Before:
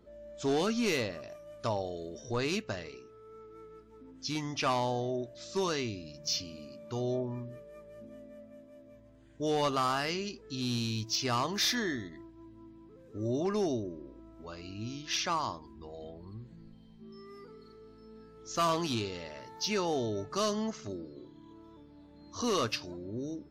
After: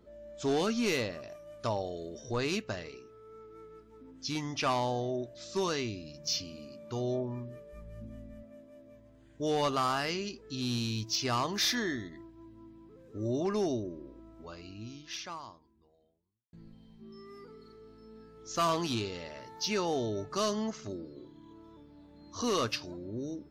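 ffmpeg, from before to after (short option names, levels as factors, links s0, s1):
-filter_complex "[0:a]asplit=3[s0][s1][s2];[s0]afade=t=out:st=7.72:d=0.02[s3];[s1]asubboost=boost=10:cutoff=120,afade=t=in:st=7.72:d=0.02,afade=t=out:st=8.42:d=0.02[s4];[s2]afade=t=in:st=8.42:d=0.02[s5];[s3][s4][s5]amix=inputs=3:normalize=0,asplit=2[s6][s7];[s6]atrim=end=16.53,asetpts=PTS-STARTPTS,afade=t=out:st=14.32:d=2.21:c=qua[s8];[s7]atrim=start=16.53,asetpts=PTS-STARTPTS,afade=t=in:d=0.004:c=hsin[s9];[s8][s9]concat=n=2:v=0:a=1"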